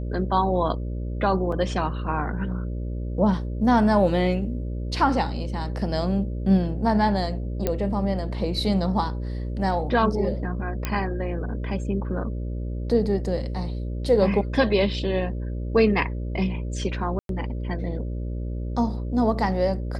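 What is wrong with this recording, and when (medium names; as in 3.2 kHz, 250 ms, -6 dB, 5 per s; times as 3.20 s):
buzz 60 Hz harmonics 10 -29 dBFS
1.52 s: dropout 3.2 ms
7.67 s: pop -10 dBFS
10.85 s: pop -11 dBFS
17.19–17.29 s: dropout 102 ms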